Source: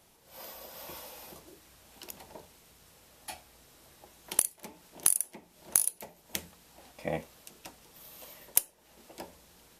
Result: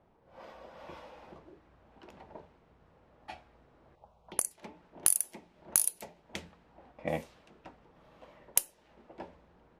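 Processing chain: 3.95–4.51 envelope phaser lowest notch 220 Hz, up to 3600 Hz, full sweep at -35 dBFS; low-pass opened by the level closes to 1100 Hz, open at -29.5 dBFS

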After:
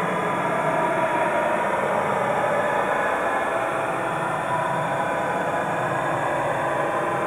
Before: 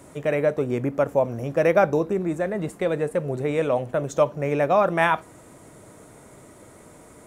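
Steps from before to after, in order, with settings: plate-style reverb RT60 4.6 s, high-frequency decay 0.8×, DRR -9 dB; Paulstretch 42×, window 0.05 s, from 5.78; bit-crush 10-bit; gain -2.5 dB

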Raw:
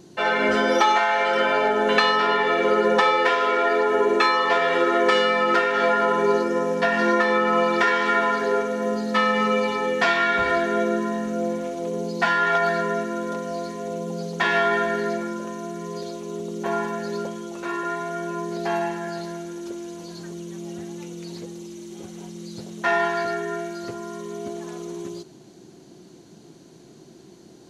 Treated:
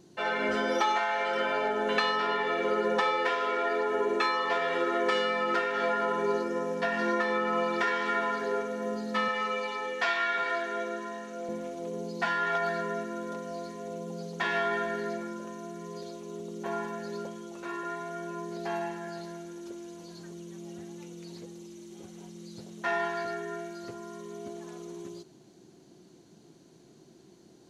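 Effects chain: 9.28–11.49 weighting filter A; gain -8.5 dB

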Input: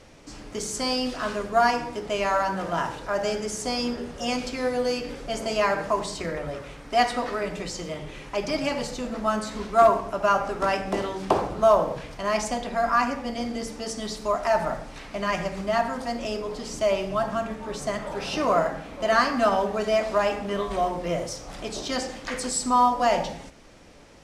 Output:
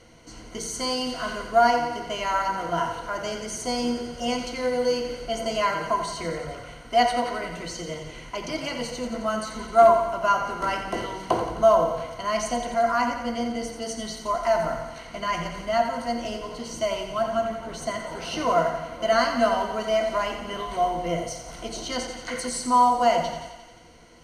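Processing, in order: ripple EQ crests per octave 1.9, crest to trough 12 dB; on a send: thinning echo 88 ms, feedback 68%, high-pass 420 Hz, level -9 dB; on the sum: gain -3 dB

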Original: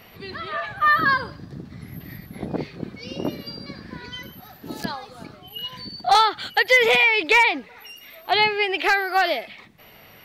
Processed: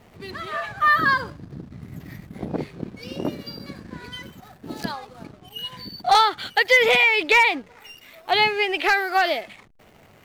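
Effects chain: backlash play -40 dBFS

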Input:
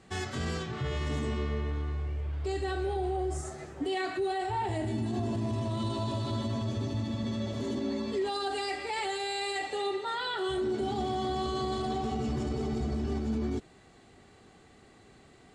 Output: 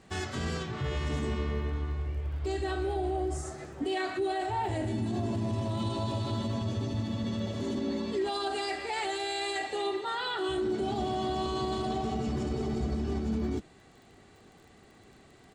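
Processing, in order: harmoniser -3 st -11 dB; crackle 28/s -49 dBFS

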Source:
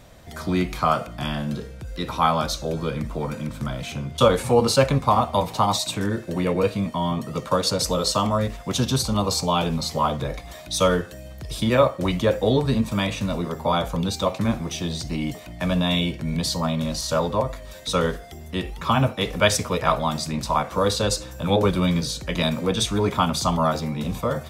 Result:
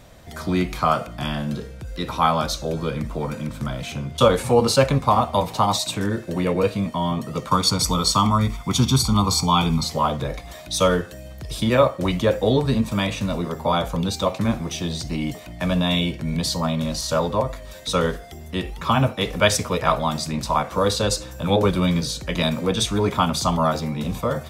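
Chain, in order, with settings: 7.48–9.84 comb 0.9 ms, depth 73%; gain +1 dB

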